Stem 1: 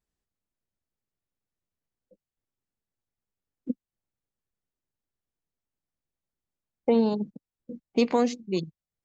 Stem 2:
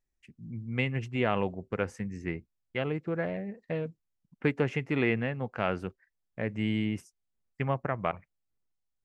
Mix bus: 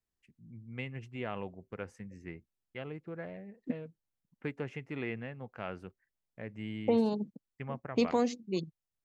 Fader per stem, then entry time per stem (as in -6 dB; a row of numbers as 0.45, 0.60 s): -5.5, -10.5 dB; 0.00, 0.00 s